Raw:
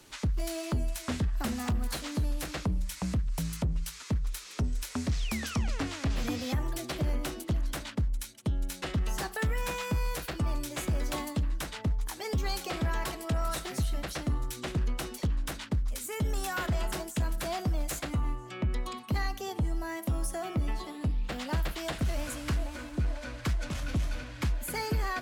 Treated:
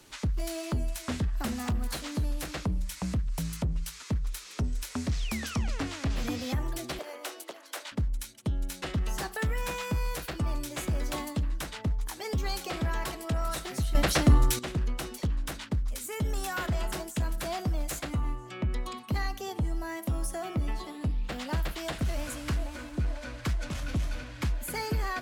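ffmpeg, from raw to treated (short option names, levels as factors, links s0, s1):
-filter_complex "[0:a]asettb=1/sr,asplit=3[s0][s1][s2];[s0]atrim=end=6.994[s3];[s1]atrim=start=6.99:end=7.92,asetpts=PTS-STARTPTS,afade=t=in:d=0.004:c=qsin,afade=t=out:st=0.926:d=0.004:c=qsin,highpass=f=440:w=0.5412,highpass=f=440:w=1.3066[s4];[s2]atrim=start=7.916[s5];[s3][s4]acrossfade=d=0.004:c1=hsin:c2=qsin[s6];[s6][s5]acrossfade=d=0.004:c1=qsin:c2=hsin,asplit=3[s7][s8][s9];[s7]atrim=end=13.952[s10];[s8]atrim=start=13.948:end=14.592,asetpts=PTS-STARTPTS,volume=3.55[s11];[s9]atrim=start=14.588[s12];[s10][s11]acrossfade=d=0.004:c1=hsin:c2=hsin[s13];[s13][s12]acrossfade=d=0.004:c1=hsin:c2=hsin"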